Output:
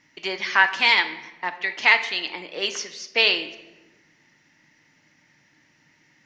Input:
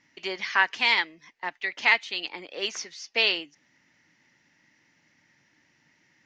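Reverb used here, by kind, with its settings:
rectangular room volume 540 cubic metres, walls mixed, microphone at 0.49 metres
level +4 dB

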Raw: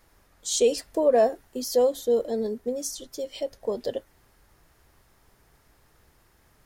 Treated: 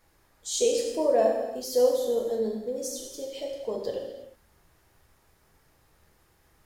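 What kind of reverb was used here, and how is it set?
reverb whose tail is shaped and stops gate 390 ms falling, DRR −1 dB
level −5.5 dB

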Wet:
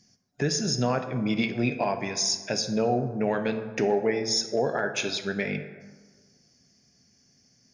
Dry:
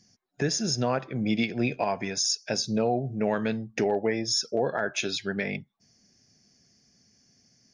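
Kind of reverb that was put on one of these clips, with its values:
dense smooth reverb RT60 1.5 s, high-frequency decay 0.45×, DRR 7.5 dB

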